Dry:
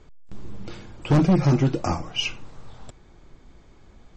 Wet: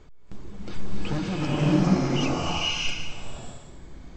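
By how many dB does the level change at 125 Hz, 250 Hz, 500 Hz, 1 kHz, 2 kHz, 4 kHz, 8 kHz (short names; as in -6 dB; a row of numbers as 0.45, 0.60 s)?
-4.0 dB, -1.0 dB, -1.5 dB, -0.5 dB, +2.5 dB, +3.0 dB, n/a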